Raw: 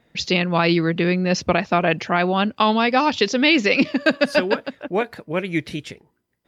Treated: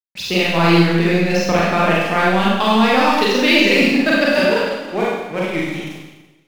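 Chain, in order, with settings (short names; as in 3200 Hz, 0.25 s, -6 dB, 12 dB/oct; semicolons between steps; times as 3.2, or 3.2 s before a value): crossover distortion -32.5 dBFS; Schroeder reverb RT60 1.1 s, combs from 32 ms, DRR -6 dB; gain -1.5 dB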